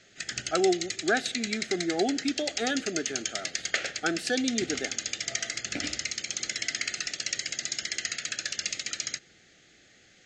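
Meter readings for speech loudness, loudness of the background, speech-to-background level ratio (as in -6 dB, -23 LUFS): -30.5 LUFS, -32.0 LUFS, 1.5 dB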